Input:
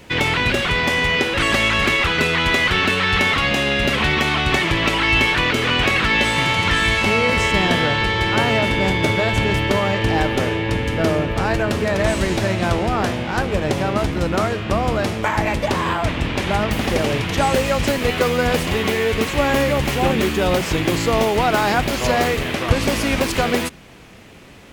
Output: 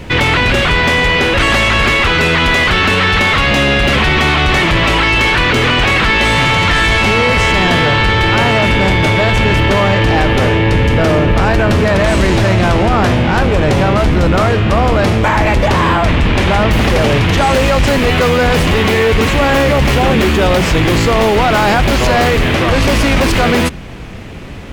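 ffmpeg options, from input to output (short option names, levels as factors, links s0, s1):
-af "lowshelf=f=120:g=11.5,apsyclip=7.94,highshelf=f=5500:g=-8.5,volume=0.473"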